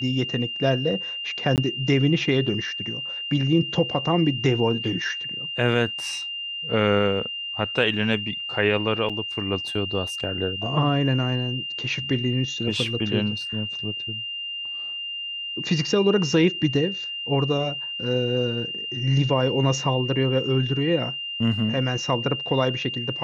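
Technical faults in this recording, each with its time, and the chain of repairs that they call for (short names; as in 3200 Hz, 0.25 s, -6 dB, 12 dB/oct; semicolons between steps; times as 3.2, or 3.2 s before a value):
tone 2800 Hz -29 dBFS
1.56–1.58 gap 18 ms
9.09–9.1 gap 6.1 ms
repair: notch 2800 Hz, Q 30; interpolate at 1.56, 18 ms; interpolate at 9.09, 6.1 ms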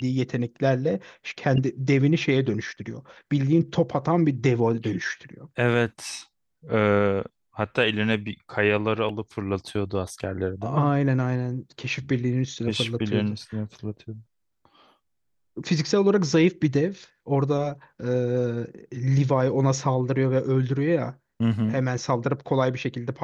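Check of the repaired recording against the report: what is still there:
none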